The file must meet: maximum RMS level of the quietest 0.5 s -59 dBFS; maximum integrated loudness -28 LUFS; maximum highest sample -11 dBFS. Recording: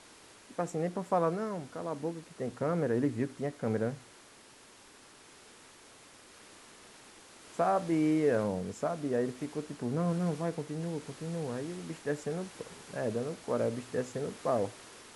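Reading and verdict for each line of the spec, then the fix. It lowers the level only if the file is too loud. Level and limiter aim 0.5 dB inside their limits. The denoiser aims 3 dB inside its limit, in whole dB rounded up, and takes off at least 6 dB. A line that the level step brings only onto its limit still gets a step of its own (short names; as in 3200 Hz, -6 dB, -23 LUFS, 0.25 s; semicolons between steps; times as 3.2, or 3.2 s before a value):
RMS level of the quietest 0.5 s -56 dBFS: fail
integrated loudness -33.5 LUFS: OK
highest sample -16.5 dBFS: OK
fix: denoiser 6 dB, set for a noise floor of -56 dBFS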